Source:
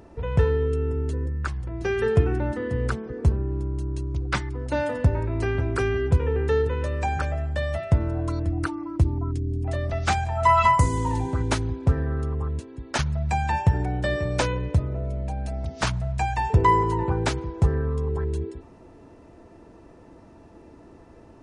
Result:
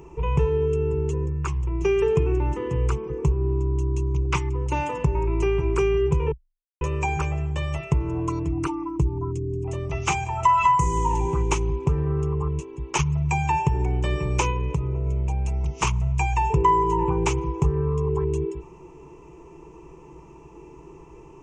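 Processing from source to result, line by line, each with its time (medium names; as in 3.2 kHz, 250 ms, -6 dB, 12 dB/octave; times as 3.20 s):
6.32–6.81 s: mute
8.89–9.91 s: peaking EQ 2.2 kHz -5.5 dB 2.7 oct
14.50–15.06 s: compression 1.5:1, threshold -29 dBFS
whole clip: rippled EQ curve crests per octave 0.73, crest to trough 17 dB; compression 2.5:1, threshold -19 dBFS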